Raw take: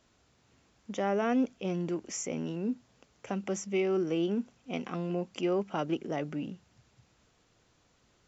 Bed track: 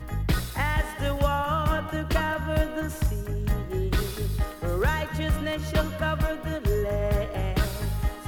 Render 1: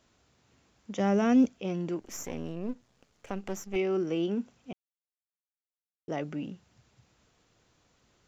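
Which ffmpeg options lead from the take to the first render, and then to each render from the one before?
-filter_complex "[0:a]asplit=3[s0][s1][s2];[s0]afade=t=out:st=0.98:d=0.02[s3];[s1]bass=f=250:g=13,treble=f=4000:g=10,afade=t=in:st=0.98:d=0.02,afade=t=out:st=1.47:d=0.02[s4];[s2]afade=t=in:st=1.47:d=0.02[s5];[s3][s4][s5]amix=inputs=3:normalize=0,asettb=1/sr,asplit=3[s6][s7][s8];[s6]atrim=end=2.004[s9];[s7]atrim=start=2:end=3.76,asetpts=PTS-STARTPTS,afade=t=in:d=0.004:c=qsin,afade=t=out:st=1.756:d=0.004:c=qsin,aeval=exprs='if(lt(val(0),0),0.251*val(0),val(0))':c=same[s10];[s8]atrim=start=3.756[s11];[s9][s10]acrossfade=d=0.004:c1=hsin:c2=qsin[s12];[s12][s11]acrossfade=d=0.004:c1=qsin:c2=hsin,asplit=3[s13][s14][s15];[s13]atrim=end=4.73,asetpts=PTS-STARTPTS,afade=t=out:st=4.726:d=0.004:c=hsin[s16];[s14]atrim=start=4.73:end=6.08,asetpts=PTS-STARTPTS,volume=0[s17];[s15]atrim=start=6.08,asetpts=PTS-STARTPTS,afade=t=in:d=0.004:c=hsin[s18];[s16][s17][s18]concat=n=3:v=0:a=1"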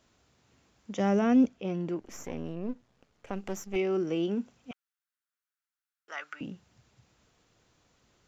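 -filter_complex "[0:a]asettb=1/sr,asplit=3[s0][s1][s2];[s0]atrim=end=1.194[s3];[s1]atrim=start=1.19:end=3.33,asetpts=PTS-STARTPTS,afade=t=in:d=0.004:c=qsin,afade=t=out:st=2.136:d=0.004:c=qsin,highshelf=f=5000:g=-10[s4];[s2]atrim=start=3.326[s5];[s3][s4]acrossfade=d=0.004:c1=hsin:c2=qsin[s6];[s6][s5]acrossfade=d=0.004:c1=qsin:c2=hsin,asettb=1/sr,asplit=3[s7][s8][s9];[s7]atrim=end=4.714[s10];[s8]atrim=start=4.71:end=6.41,asetpts=PTS-STARTPTS,afade=t=in:d=0.004:c=qsin,afade=t=out:st=1.696:d=0.004:c=qsin,highpass=f=1400:t=q:w=3.9[s11];[s9]atrim=start=6.406[s12];[s10][s11]acrossfade=d=0.004:c1=hsin:c2=qsin[s13];[s13][s12]acrossfade=d=0.004:c1=qsin:c2=hsin"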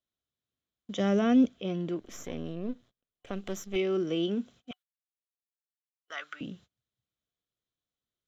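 -af "agate=range=0.0398:threshold=0.00224:ratio=16:detection=peak,superequalizer=9b=0.501:13b=2.51"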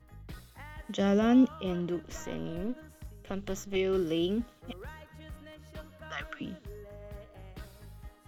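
-filter_complex "[1:a]volume=0.0891[s0];[0:a][s0]amix=inputs=2:normalize=0"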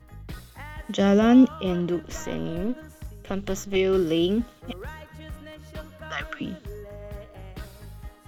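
-af "volume=2.24"

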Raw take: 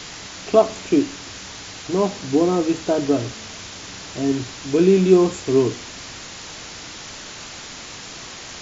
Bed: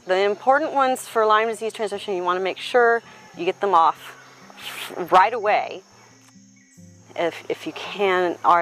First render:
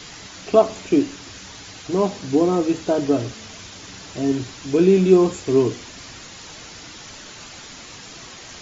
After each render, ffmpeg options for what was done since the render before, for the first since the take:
-af "afftdn=nr=6:nf=-37"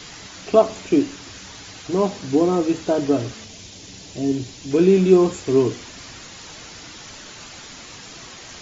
-filter_complex "[0:a]asettb=1/sr,asplit=3[s0][s1][s2];[s0]atrim=end=3.444[s3];[s1]atrim=start=3.44:end=4.71,asetpts=PTS-STARTPTS,afade=t=in:d=0.004:c=qsin,afade=t=out:st=1.266:d=0.004:c=qsin,equalizer=f=1300:w=1.1:g=-11.5[s4];[s2]atrim=start=4.706[s5];[s3][s4]acrossfade=d=0.004:c1=hsin:c2=qsin[s6];[s6][s5]acrossfade=d=0.004:c1=qsin:c2=hsin"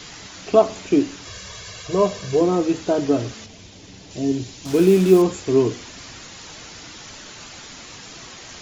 -filter_complex "[0:a]asettb=1/sr,asplit=3[s0][s1][s2];[s0]atrim=end=1.254[s3];[s1]atrim=start=1.25:end=2.41,asetpts=PTS-STARTPTS,afade=t=in:d=0.004:c=qsin,afade=t=out:st=1.156:d=0.004:c=qsin,aecho=1:1:1.8:0.82,atrim=end_sample=51156[s4];[s2]atrim=start=2.406[s5];[s3][s4]acrossfade=d=0.004:c1=hsin:c2=qsin[s6];[s6][s5]acrossfade=d=0.004:c1=qsin:c2=hsin,asettb=1/sr,asplit=3[s7][s8][s9];[s7]atrim=end=3.464[s10];[s8]atrim=start=3.46:end=4.11,asetpts=PTS-STARTPTS,afade=t=in:d=0.004:c=qsin,afade=t=out:st=0.646:d=0.004:c=qsin,highshelf=f=3500:g=-9[s11];[s9]atrim=start=4.106[s12];[s10][s11]acrossfade=d=0.004:c1=hsin:c2=qsin[s13];[s13][s12]acrossfade=d=0.004:c1=qsin:c2=hsin,asettb=1/sr,asplit=3[s14][s15][s16];[s14]atrim=end=4.654[s17];[s15]atrim=start=4.65:end=5.22,asetpts=PTS-STARTPTS,afade=t=in:d=0.004:c=qsin,afade=t=out:st=0.566:d=0.004:c=qsin,acrusher=bits=4:mix=0:aa=0.5[s18];[s16]atrim=start=5.216[s19];[s17][s18]acrossfade=d=0.004:c1=hsin:c2=qsin[s20];[s20][s19]acrossfade=d=0.004:c1=qsin:c2=hsin"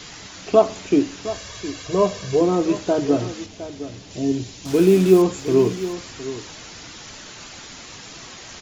-af "aecho=1:1:712:0.211"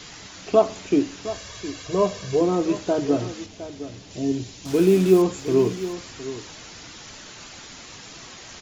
-af "volume=0.75"

